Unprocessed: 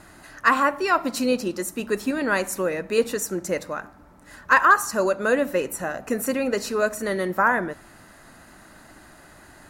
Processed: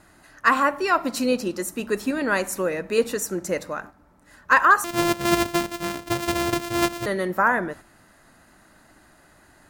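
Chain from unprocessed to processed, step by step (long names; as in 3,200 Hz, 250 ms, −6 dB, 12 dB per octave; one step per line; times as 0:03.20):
0:04.84–0:07.06: samples sorted by size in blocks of 128 samples
noise gate −40 dBFS, range −6 dB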